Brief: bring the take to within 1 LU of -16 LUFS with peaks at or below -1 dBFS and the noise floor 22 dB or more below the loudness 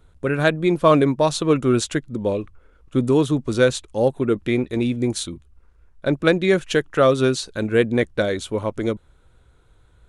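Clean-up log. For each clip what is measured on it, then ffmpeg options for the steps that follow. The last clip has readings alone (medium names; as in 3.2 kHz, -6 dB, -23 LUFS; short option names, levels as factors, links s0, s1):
loudness -20.5 LUFS; peak level -3.0 dBFS; loudness target -16.0 LUFS
-> -af "volume=1.68,alimiter=limit=0.891:level=0:latency=1"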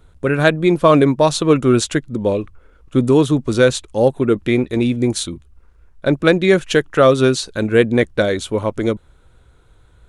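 loudness -16.5 LUFS; peak level -1.0 dBFS; noise floor -51 dBFS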